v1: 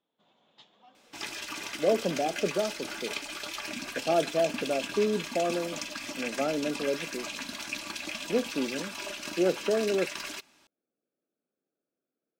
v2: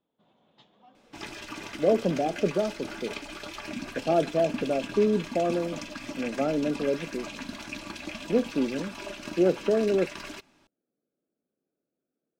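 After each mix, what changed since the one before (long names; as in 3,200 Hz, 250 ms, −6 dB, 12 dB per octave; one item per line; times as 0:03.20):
master: add spectral tilt −2.5 dB per octave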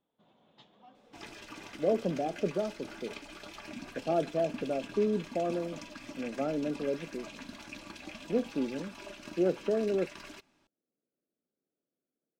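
speech −5.5 dB
second sound −7.5 dB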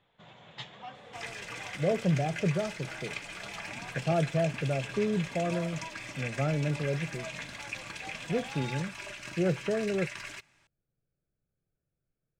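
speech: remove high-pass filter 270 Hz 12 dB per octave
first sound +12.0 dB
master: add octave-band graphic EQ 125/250/2,000/8,000 Hz +12/−11/+11/+9 dB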